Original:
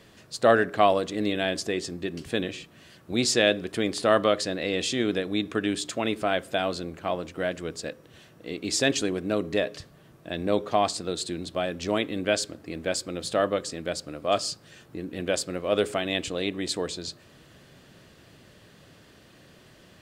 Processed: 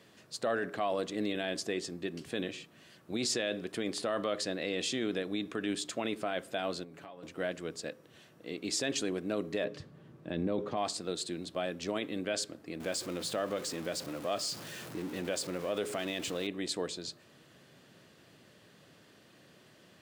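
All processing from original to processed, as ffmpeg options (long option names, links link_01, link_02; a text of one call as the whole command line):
ffmpeg -i in.wav -filter_complex "[0:a]asettb=1/sr,asplit=3[link_01][link_02][link_03];[link_01]atrim=end=6.834[link_04];[link_02]atrim=start=6.83:end=7.23,asetpts=PTS-STARTPTS,afade=type=in:duration=0.004:curve=qsin,afade=type=out:start_time=0.396:duration=0.004:curve=qsin,aecho=1:1:7.1:0.56,atrim=end_sample=17640,acompressor=threshold=-39dB:ratio=10:attack=3.2:release=140:knee=1:detection=peak[link_05];[link_03]atrim=start=7.226[link_06];[link_04][link_05]acrossfade=duration=0.004:curve1=hsin:curve2=qsin[link_07];[link_07][link_06]acrossfade=duration=0.004:curve1=qsin:curve2=hsin,asettb=1/sr,asplit=3[link_08][link_09][link_10];[link_08]atrim=end=9.644[link_11];[link_09]atrim=start=9.64:end=10.77,asetpts=PTS-STARTPTS,afade=type=in:duration=0.004:curve=qsin,afade=type=out:start_time=1.126:duration=0.004:curve=qsin,lowpass=frequency=3400:poles=1,lowshelf=frequency=420:gain=9,bandreject=frequency=680:width=9.5[link_12];[link_10]atrim=start=10.766[link_13];[link_11][link_12]acrossfade=duration=0.004:curve1=hsin:curve2=qsin[link_14];[link_14][link_13]acrossfade=duration=0.004:curve1=qsin:curve2=hsin,asettb=1/sr,asplit=3[link_15][link_16][link_17];[link_15]atrim=end=12.804[link_18];[link_16]atrim=start=12.8:end=16.47,asetpts=PTS-STARTPTS,afade=type=in:duration=0.004:curve=qsin,afade=type=out:start_time=3.666:duration=0.004:curve=qsin,aeval=exprs='val(0)+0.5*0.0188*sgn(val(0))':channel_layout=same,acompressor=threshold=-26dB:ratio=2:attack=3.2:release=140:knee=1:detection=peak[link_19];[link_17]atrim=start=16.466[link_20];[link_18][link_19]acrossfade=duration=0.004:curve1=hsin:curve2=qsin[link_21];[link_21][link_20]acrossfade=duration=0.004:curve1=qsin:curve2=hsin,alimiter=limit=-17dB:level=0:latency=1:release=18,highpass=130,volume=-5.5dB" out.wav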